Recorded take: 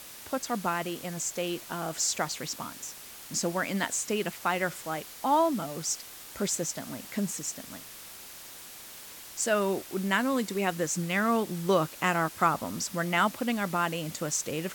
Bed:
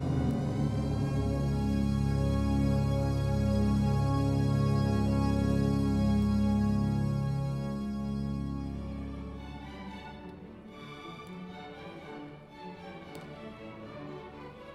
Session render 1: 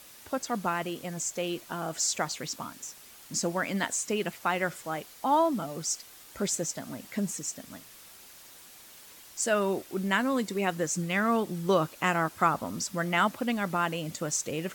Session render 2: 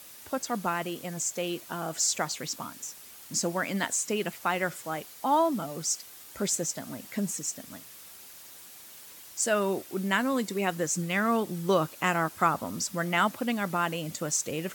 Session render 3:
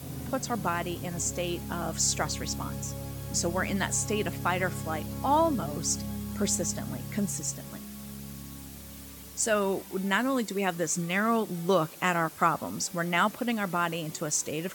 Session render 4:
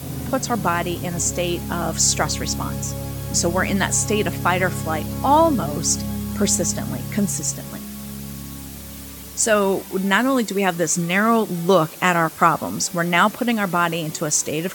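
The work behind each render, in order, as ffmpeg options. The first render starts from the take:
-af "afftdn=nr=6:nf=-46"
-af "highpass=52,highshelf=f=8.2k:g=5"
-filter_complex "[1:a]volume=-9dB[a];[0:a][a]amix=inputs=2:normalize=0"
-af "volume=9dB"

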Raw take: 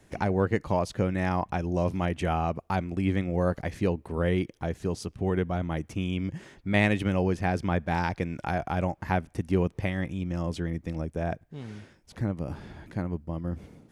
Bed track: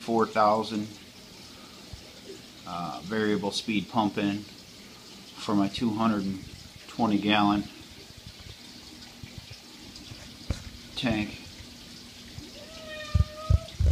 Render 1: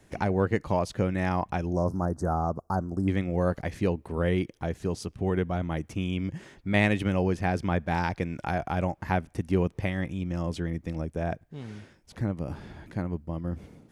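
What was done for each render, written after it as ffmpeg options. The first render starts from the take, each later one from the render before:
-filter_complex "[0:a]asettb=1/sr,asplit=3[a][b][c];[a]atrim=end=1.734[d];[b]atrim=start=1.73:end=3.08,asetpts=PTS-STARTPTS,afade=t=in:d=0.004:c=qsin,afade=t=out:st=1.346:d=0.004:c=qsin,asuperstop=centerf=2700:order=8:qfactor=0.77[e];[c]atrim=start=3.076[f];[d][e]acrossfade=d=0.004:c1=hsin:c2=qsin[g];[g][f]acrossfade=d=0.004:c1=qsin:c2=hsin"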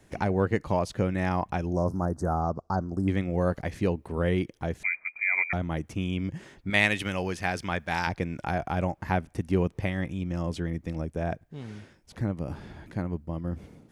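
-filter_complex "[0:a]asettb=1/sr,asplit=3[a][b][c];[a]atrim=end=2.414[d];[b]atrim=start=2.41:end=2.93,asetpts=PTS-STARTPTS,afade=t=in:d=0.004:c=qsin,afade=t=out:st=0.516:d=0.004:c=qsin,lowpass=f=5k:t=q:w=1.6[e];[c]atrim=start=2.926[f];[d][e]acrossfade=d=0.004:c1=hsin:c2=qsin[g];[g][f]acrossfade=d=0.004:c1=qsin:c2=hsin,asettb=1/sr,asplit=3[h][i][j];[h]atrim=end=4.834[k];[i]atrim=start=4.83:end=5.53,asetpts=PTS-STARTPTS,afade=t=in:d=0.004:c=qsin,afade=t=out:st=0.696:d=0.004:c=qsin,lowpass=f=2.1k:t=q:w=0.5098,lowpass=f=2.1k:t=q:w=0.6013,lowpass=f=2.1k:t=q:w=0.9,lowpass=f=2.1k:t=q:w=2.563,afreqshift=-2500[l];[j]atrim=start=5.526[m];[k][l]acrossfade=d=0.004:c1=hsin:c2=qsin[n];[n][m]acrossfade=d=0.004:c1=qsin:c2=hsin,asettb=1/sr,asplit=3[o][p][q];[o]atrim=end=6.704[r];[p]atrim=start=6.7:end=8.07,asetpts=PTS-STARTPTS,afade=t=in:d=0.004:c=qsin,afade=t=out:st=1.366:d=0.004:c=qsin,tiltshelf=f=970:g=-7[s];[q]atrim=start=8.066[t];[r][s]acrossfade=d=0.004:c1=hsin:c2=qsin[u];[u][t]acrossfade=d=0.004:c1=qsin:c2=hsin"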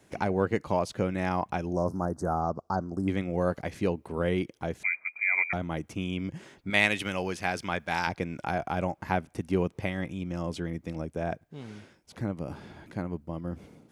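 -af "highpass=f=160:p=1,bandreject=f=1.8k:w=16"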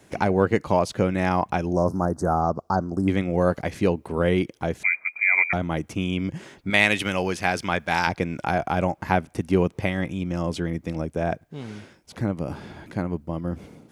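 -af "volume=6.5dB,alimiter=limit=-3dB:level=0:latency=1"

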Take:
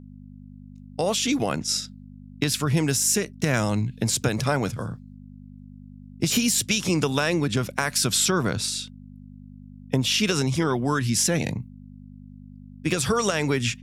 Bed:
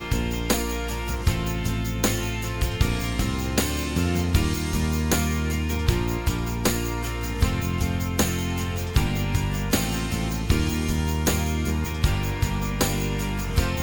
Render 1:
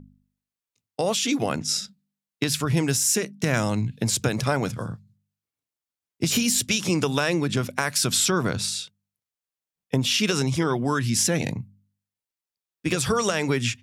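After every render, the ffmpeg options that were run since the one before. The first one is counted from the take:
-af "bandreject=f=50:t=h:w=4,bandreject=f=100:t=h:w=4,bandreject=f=150:t=h:w=4,bandreject=f=200:t=h:w=4,bandreject=f=250:t=h:w=4"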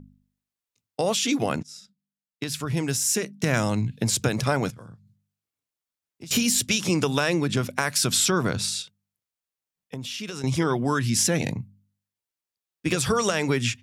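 -filter_complex "[0:a]asettb=1/sr,asplit=3[a][b][c];[a]atrim=end=4.704[d];[b]atrim=start=4.7:end=6.31,asetpts=PTS-STARTPTS,afade=t=in:d=0.004:c=qsin,afade=t=out:st=1.606:d=0.004:c=qsin,acompressor=threshold=-51dB:ratio=2:attack=3.2:release=140:knee=1:detection=peak[e];[c]atrim=start=6.306[f];[d][e]acrossfade=d=0.004:c1=hsin:c2=qsin[g];[g][f]acrossfade=d=0.004:c1=qsin:c2=hsin,asettb=1/sr,asplit=3[h][i][j];[h]atrim=end=8.824[k];[i]atrim=start=8.82:end=10.44,asetpts=PTS-STARTPTS,afade=t=in:d=0.004:c=qsin,afade=t=out:st=1.616:d=0.004:c=qsin,acompressor=threshold=-40dB:ratio=2:attack=3.2:release=140:knee=1:detection=peak[l];[j]atrim=start=10.436[m];[k][l]acrossfade=d=0.004:c1=hsin:c2=qsin[n];[n][m]acrossfade=d=0.004:c1=qsin:c2=hsin,asplit=2[o][p];[o]atrim=end=1.63,asetpts=PTS-STARTPTS,afade=t=out:st=1.626:d=0.004:c=hsin:silence=0.0749894[q];[p]atrim=start=1.63,asetpts=PTS-STARTPTS,afade=t=in:d=1.87:silence=0.0749894[r];[q][r]concat=n=2:v=0:a=1"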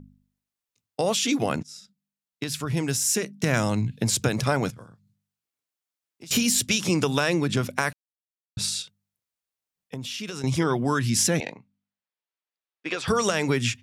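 -filter_complex "[0:a]asettb=1/sr,asplit=3[a][b][c];[a]atrim=end=4.844[d];[b]atrim=start=4.84:end=6.3,asetpts=PTS-STARTPTS,afade=t=in:d=0.004:c=qsin,afade=t=out:st=1.456:d=0.004:c=qsin,lowshelf=f=180:g=-11[e];[c]atrim=start=6.296[f];[d][e]acrossfade=d=0.004:c1=hsin:c2=qsin[g];[g][f]acrossfade=d=0.004:c1=qsin:c2=hsin,asettb=1/sr,asplit=3[h][i][j];[h]atrim=end=11.404[k];[i]atrim=start=11.4:end=13.08,asetpts=PTS-STARTPTS,afade=t=in:d=0.004:c=qsin,afade=t=out:st=1.676:d=0.004:c=qsin,highpass=470,lowpass=3.6k[l];[j]atrim=start=13.076[m];[k][l]acrossfade=d=0.004:c1=hsin:c2=qsin[n];[n][m]acrossfade=d=0.004:c1=qsin:c2=hsin,asplit=3[o][p][q];[o]atrim=end=7.93,asetpts=PTS-STARTPTS,afade=t=out:st=7.926:d=0.004:c=hsin[r];[p]atrim=start=7.93:end=8.57,asetpts=PTS-STARTPTS,volume=0[s];[q]atrim=start=8.57,asetpts=PTS-STARTPTS,afade=t=in:d=0.004:c=hsin[t];[r][s][t]concat=n=3:v=0:a=1"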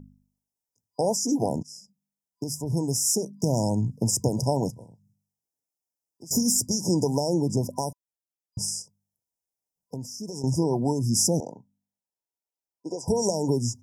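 -af "afftfilt=real='re*(1-between(b*sr/4096,1000,4900))':imag='im*(1-between(b*sr/4096,1000,4900))':win_size=4096:overlap=0.75"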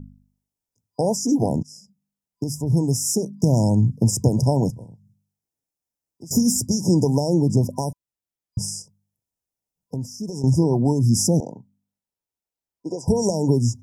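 -af "lowshelf=f=310:g=10"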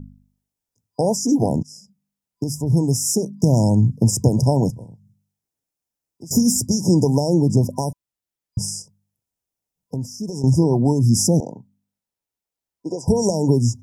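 -af "volume=2dB"

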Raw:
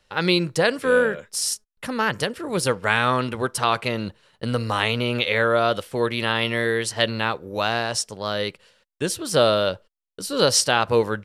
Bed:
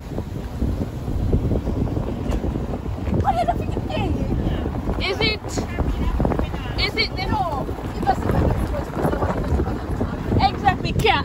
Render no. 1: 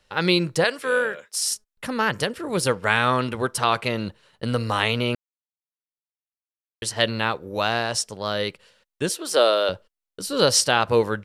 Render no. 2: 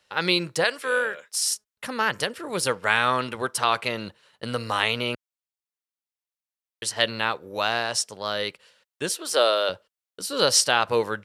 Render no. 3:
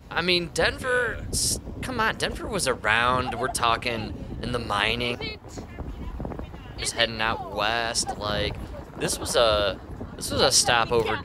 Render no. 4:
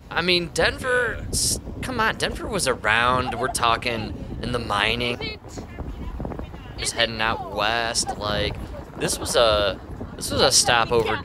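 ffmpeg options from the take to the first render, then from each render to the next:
-filter_complex "[0:a]asettb=1/sr,asplit=3[a][b][c];[a]atrim=end=0.644[d];[b]atrim=start=0.64:end=1.5,asetpts=PTS-STARTPTS,afade=t=in:d=0.004:c=qsin,afade=t=out:st=0.856:d=0.004:c=qsin,highpass=f=720:p=1[e];[c]atrim=start=1.496[f];[d][e]acrossfade=d=0.004:c1=hsin:c2=qsin[g];[g][f]acrossfade=d=0.004:c1=qsin:c2=hsin,asettb=1/sr,asplit=3[h][i][j];[h]atrim=end=9.094[k];[i]atrim=start=9.09:end=9.69,asetpts=PTS-STARTPTS,afade=t=in:d=0.004:c=qsin,afade=t=out:st=0.596:d=0.004:c=qsin,highpass=f=320:w=0.5412,highpass=f=320:w=1.3066[l];[j]atrim=start=9.686[m];[k][l]acrossfade=d=0.004:c1=hsin:c2=qsin[n];[n][m]acrossfade=d=0.004:c1=qsin:c2=hsin,asplit=3[o][p][q];[o]atrim=end=5.15,asetpts=PTS-STARTPTS,afade=t=out:st=5.146:d=0.004:c=hsin[r];[p]atrim=start=5.15:end=6.82,asetpts=PTS-STARTPTS,volume=0[s];[q]atrim=start=6.82,asetpts=PTS-STARTPTS,afade=t=in:d=0.004:c=hsin[t];[r][s][t]concat=n=3:v=0:a=1"
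-af "highpass=70,lowshelf=f=390:g=-9"
-filter_complex "[1:a]volume=-13dB[a];[0:a][a]amix=inputs=2:normalize=0"
-af "volume=2.5dB,alimiter=limit=-2dB:level=0:latency=1"

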